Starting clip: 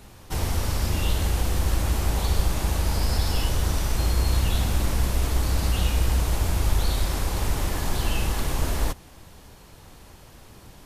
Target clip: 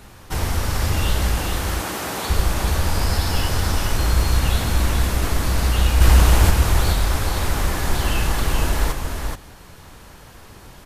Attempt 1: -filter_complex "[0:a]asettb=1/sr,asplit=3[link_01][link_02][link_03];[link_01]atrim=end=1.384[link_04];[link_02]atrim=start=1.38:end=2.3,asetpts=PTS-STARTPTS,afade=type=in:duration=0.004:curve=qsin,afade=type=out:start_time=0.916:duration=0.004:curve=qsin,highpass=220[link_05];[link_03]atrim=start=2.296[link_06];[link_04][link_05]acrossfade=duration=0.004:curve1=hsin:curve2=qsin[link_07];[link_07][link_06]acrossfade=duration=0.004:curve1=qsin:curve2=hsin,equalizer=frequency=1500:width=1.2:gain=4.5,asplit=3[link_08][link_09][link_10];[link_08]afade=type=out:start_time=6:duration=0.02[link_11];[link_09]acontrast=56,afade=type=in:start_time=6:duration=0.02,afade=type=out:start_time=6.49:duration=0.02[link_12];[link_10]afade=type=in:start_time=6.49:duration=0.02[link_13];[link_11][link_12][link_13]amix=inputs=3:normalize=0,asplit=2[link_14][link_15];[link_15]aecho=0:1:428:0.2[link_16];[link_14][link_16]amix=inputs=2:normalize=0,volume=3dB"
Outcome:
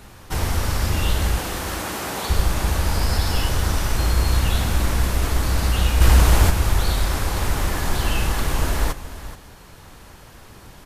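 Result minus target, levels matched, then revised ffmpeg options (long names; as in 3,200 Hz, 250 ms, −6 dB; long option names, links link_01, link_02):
echo-to-direct −9 dB
-filter_complex "[0:a]asettb=1/sr,asplit=3[link_01][link_02][link_03];[link_01]atrim=end=1.384[link_04];[link_02]atrim=start=1.38:end=2.3,asetpts=PTS-STARTPTS,afade=type=in:duration=0.004:curve=qsin,afade=type=out:start_time=0.916:duration=0.004:curve=qsin,highpass=220[link_05];[link_03]atrim=start=2.296[link_06];[link_04][link_05]acrossfade=duration=0.004:curve1=hsin:curve2=qsin[link_07];[link_07][link_06]acrossfade=duration=0.004:curve1=qsin:curve2=hsin,equalizer=frequency=1500:width=1.2:gain=4.5,asplit=3[link_08][link_09][link_10];[link_08]afade=type=out:start_time=6:duration=0.02[link_11];[link_09]acontrast=56,afade=type=in:start_time=6:duration=0.02,afade=type=out:start_time=6.49:duration=0.02[link_12];[link_10]afade=type=in:start_time=6.49:duration=0.02[link_13];[link_11][link_12][link_13]amix=inputs=3:normalize=0,asplit=2[link_14][link_15];[link_15]aecho=0:1:428:0.562[link_16];[link_14][link_16]amix=inputs=2:normalize=0,volume=3dB"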